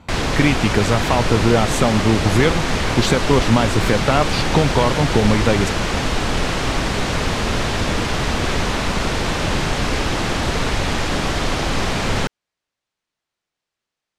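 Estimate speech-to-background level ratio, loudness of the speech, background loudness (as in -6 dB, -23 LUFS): 2.0 dB, -19.0 LUFS, -21.0 LUFS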